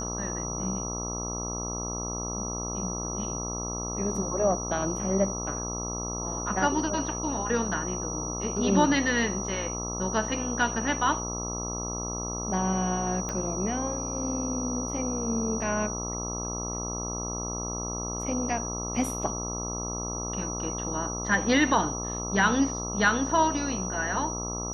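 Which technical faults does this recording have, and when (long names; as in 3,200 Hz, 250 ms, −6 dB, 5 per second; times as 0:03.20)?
mains buzz 60 Hz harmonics 22 −35 dBFS
whistle 5,800 Hz −34 dBFS
0:13.29: click −19 dBFS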